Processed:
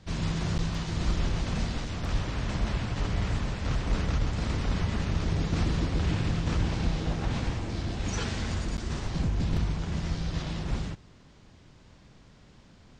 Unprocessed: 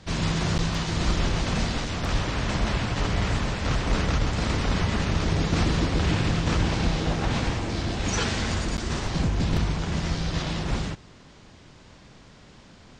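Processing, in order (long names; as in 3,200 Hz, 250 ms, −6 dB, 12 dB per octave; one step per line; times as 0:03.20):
low-shelf EQ 220 Hz +6 dB
level −8 dB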